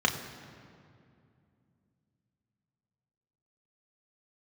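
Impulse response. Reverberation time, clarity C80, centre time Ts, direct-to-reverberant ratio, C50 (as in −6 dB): 2.4 s, 10.0 dB, 29 ms, 1.5 dB, 9.0 dB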